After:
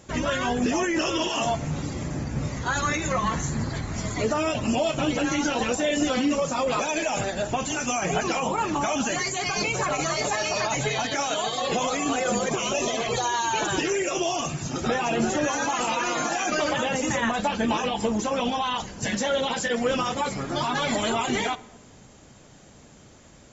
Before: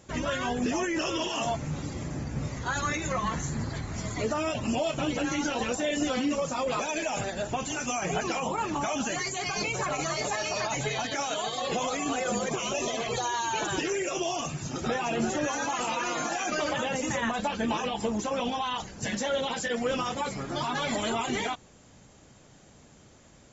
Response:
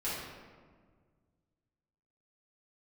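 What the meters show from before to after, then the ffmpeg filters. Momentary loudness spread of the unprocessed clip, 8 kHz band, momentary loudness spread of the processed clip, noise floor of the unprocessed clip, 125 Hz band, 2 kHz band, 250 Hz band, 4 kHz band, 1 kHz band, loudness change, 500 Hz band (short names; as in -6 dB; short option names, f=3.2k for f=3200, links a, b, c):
4 LU, n/a, 4 LU, -55 dBFS, +4.0 dB, +4.5 dB, +4.5 dB, +4.5 dB, +4.5 dB, +4.5 dB, +4.5 dB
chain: -filter_complex "[0:a]asplit=2[a][b];[1:a]atrim=start_sample=2205,asetrate=52920,aresample=44100[c];[b][c]afir=irnorm=-1:irlink=0,volume=-22dB[d];[a][d]amix=inputs=2:normalize=0,volume=4dB"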